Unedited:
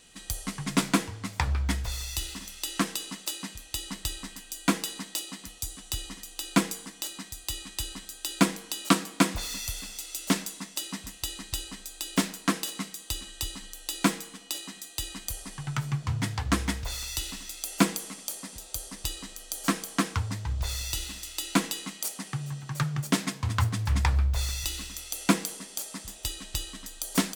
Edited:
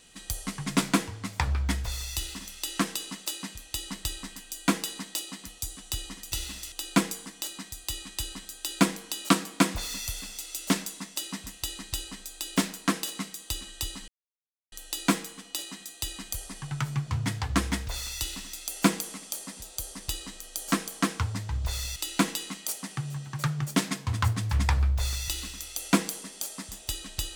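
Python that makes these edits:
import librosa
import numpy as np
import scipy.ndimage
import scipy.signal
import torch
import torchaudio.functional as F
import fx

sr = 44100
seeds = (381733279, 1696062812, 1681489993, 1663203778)

y = fx.edit(x, sr, fx.insert_silence(at_s=13.68, length_s=0.64),
    fx.move(start_s=20.92, length_s=0.4, to_s=6.32), tone=tone)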